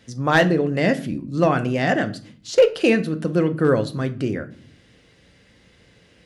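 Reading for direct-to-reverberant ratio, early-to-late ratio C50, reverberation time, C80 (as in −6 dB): 9.0 dB, 17.0 dB, 0.50 s, 21.0 dB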